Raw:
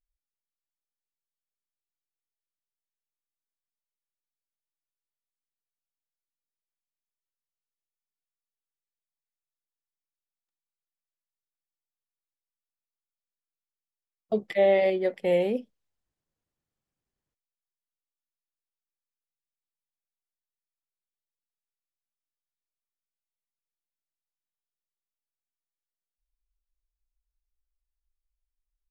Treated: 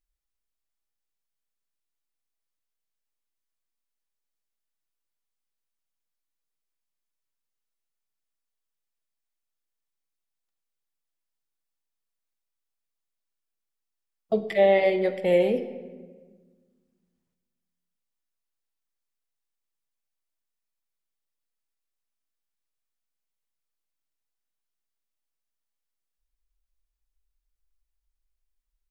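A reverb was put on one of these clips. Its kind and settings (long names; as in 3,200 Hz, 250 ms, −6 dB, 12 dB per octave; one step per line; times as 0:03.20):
rectangular room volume 1,300 cubic metres, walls mixed, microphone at 0.64 metres
level +2.5 dB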